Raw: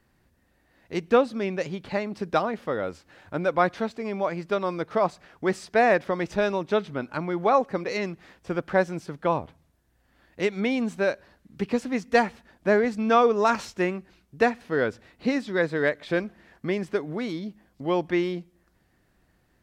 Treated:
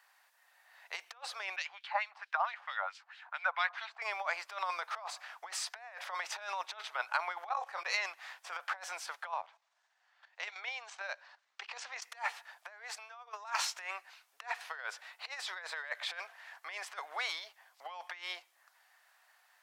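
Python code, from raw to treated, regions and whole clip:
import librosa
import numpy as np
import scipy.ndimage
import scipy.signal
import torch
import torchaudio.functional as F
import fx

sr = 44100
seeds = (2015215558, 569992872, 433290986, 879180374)

y = fx.chain(x, sr, fx.wah_lfo(hz=4.5, low_hz=800.0, high_hz=3700.0, q=2.1),
    fx.highpass(hz=470.0, slope=12), at=(1.56, 4.02))
y = fx.chain(y, sr, fx.doubler(ms=26.0, db=-10),
    fx.level_steps(step_db=17),
    fx.notch(hz=2100.0, q=23.0), at=(7.49, 7.94))
y = fx.chain(y, sr, fx.lowpass(hz=6800.0, slope=24),
    fx.level_steps(step_db=12), at=(9.31, 12.02))
y = fx.over_compress(y, sr, threshold_db=-29.0, ratio=-0.5)
y = scipy.signal.sosfilt(scipy.signal.butter(6, 750.0, 'highpass', fs=sr, output='sos'), y)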